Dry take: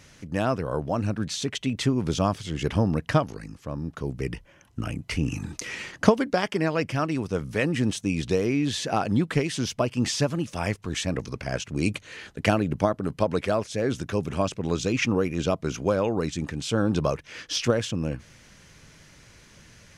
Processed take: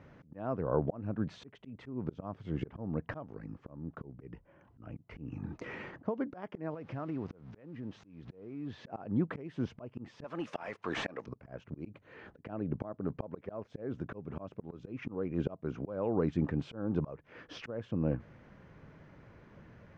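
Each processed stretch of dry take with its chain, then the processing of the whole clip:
0:06.74–0:08.87: spike at every zero crossing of −22 dBFS + low-pass filter 5,800 Hz 24 dB per octave + downward compressor 12 to 1, threshold −32 dBFS
0:10.24–0:11.26: spectral tilt +3 dB per octave + mid-hump overdrive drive 18 dB, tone 7,600 Hz, clips at −12 dBFS
whole clip: low-pass filter 1,100 Hz 12 dB per octave; low-shelf EQ 62 Hz −11 dB; volume swells 509 ms; level +1 dB

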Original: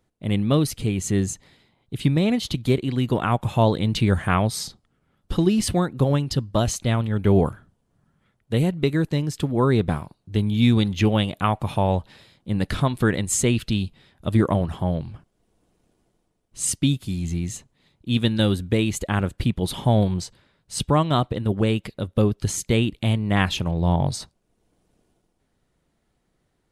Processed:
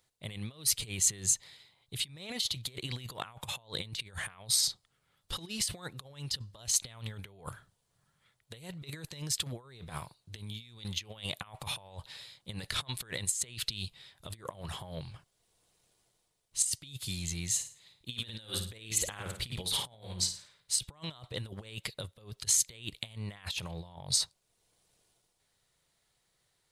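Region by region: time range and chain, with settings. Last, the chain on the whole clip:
0:17.51–0:20.75: mains-hum notches 50/100/150/200 Hz + flutter between parallel walls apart 9.4 metres, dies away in 0.38 s
whole clip: graphic EQ with 10 bands 125 Hz +6 dB, 250 Hz −7 dB, 500 Hz +5 dB, 1,000 Hz +6 dB, 2,000 Hz +6 dB, 4,000 Hz +9 dB, 8,000 Hz +4 dB; compressor whose output falls as the input rises −23 dBFS, ratio −0.5; first-order pre-emphasis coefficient 0.8; level −5 dB

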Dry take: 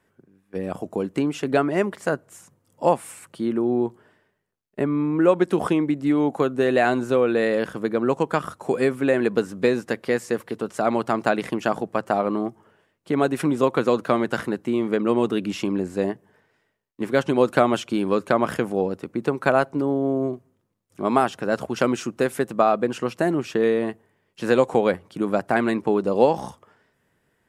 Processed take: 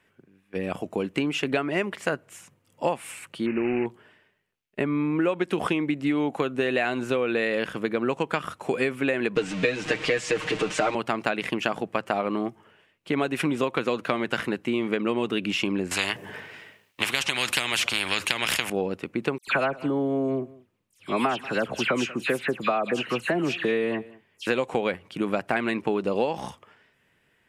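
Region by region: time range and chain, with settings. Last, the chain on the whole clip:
0:03.46–0:03.86: variable-slope delta modulation 16 kbit/s + bad sample-rate conversion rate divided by 8×, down none, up filtered
0:09.36–0:10.95: converter with a step at zero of −31.5 dBFS + low-pass filter 8,000 Hz 24 dB per octave + comb filter 6.5 ms, depth 99%
0:15.91–0:18.70: high-pass filter 57 Hz + every bin compressed towards the loudest bin 4 to 1
0:19.38–0:24.47: all-pass dispersion lows, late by 95 ms, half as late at 2,600 Hz + single-tap delay 187 ms −23 dB
whole clip: parametric band 2,600 Hz +11.5 dB 1.1 octaves; downward compressor, threshold −19 dBFS; level −1.5 dB

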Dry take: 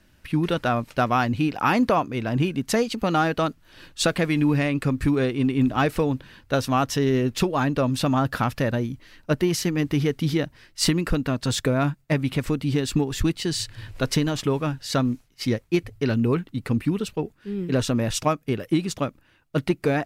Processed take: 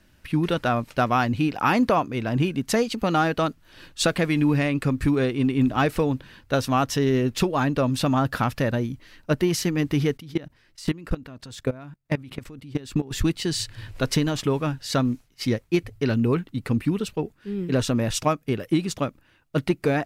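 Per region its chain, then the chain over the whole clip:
0:10.17–0:13.11: high-shelf EQ 3,400 Hz −2.5 dB + output level in coarse steps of 20 dB
whole clip: no processing

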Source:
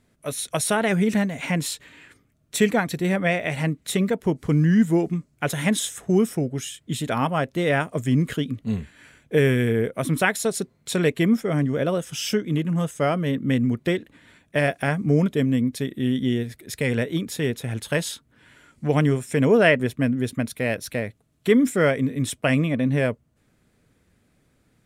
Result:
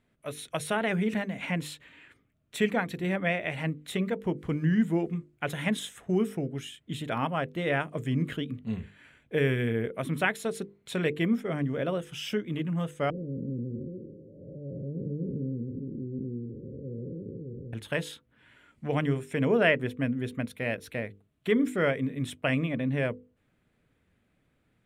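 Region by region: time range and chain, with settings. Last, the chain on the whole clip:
0:13.10–0:17.73: spectrum smeared in time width 452 ms + Chebyshev low-pass with heavy ripple 550 Hz, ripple 3 dB
whole clip: high shelf with overshoot 4,000 Hz −7 dB, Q 1.5; mains-hum notches 50/100/150/200/250/300/350/400/450/500 Hz; level −6.5 dB

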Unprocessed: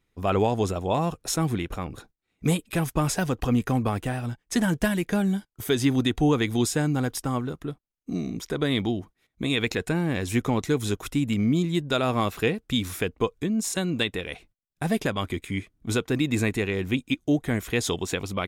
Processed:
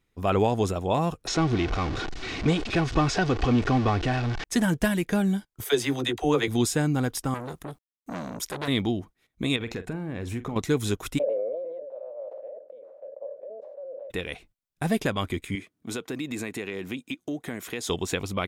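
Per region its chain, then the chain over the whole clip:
0:01.27–0:04.44: converter with a step at zero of −26.5 dBFS + low-pass filter 5,500 Hz 24 dB per octave + comb filter 2.7 ms, depth 34%
0:05.64–0:06.48: low shelf with overshoot 320 Hz −7.5 dB, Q 1.5 + double-tracking delay 14 ms −11.5 dB + all-pass dispersion lows, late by 49 ms, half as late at 360 Hz
0:07.34–0:08.68: parametric band 11,000 Hz +11.5 dB 1.5 octaves + bit-depth reduction 12 bits, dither none + saturating transformer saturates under 2,500 Hz
0:09.56–0:10.56: high-shelf EQ 2,900 Hz −12 dB + downward compressor, threshold −28 dBFS + double-tracking delay 44 ms −13 dB
0:11.17–0:14.10: ceiling on every frequency bin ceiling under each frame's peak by 22 dB + flat-topped band-pass 560 Hz, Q 7.1 + level that may fall only so fast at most 23 dB per second
0:15.55–0:17.90: high-pass filter 190 Hz + downward compressor 3 to 1, threshold −30 dBFS
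whole clip: no processing

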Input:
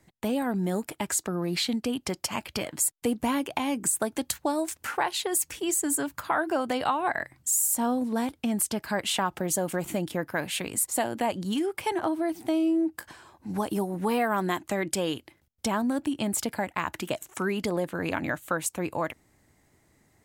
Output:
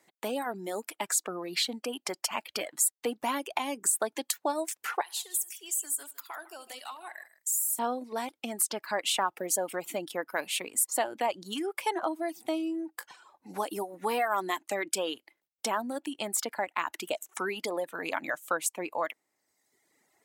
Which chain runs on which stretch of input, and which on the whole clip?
0:05.01–0:07.79: first-order pre-emphasis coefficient 0.9 + downward compressor 2 to 1, threshold −28 dBFS + multi-tap delay 72/154 ms −9/−9.5 dB
whole clip: high-pass filter 420 Hz 12 dB per octave; notch filter 1,600 Hz, Q 24; reverb reduction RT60 1.1 s

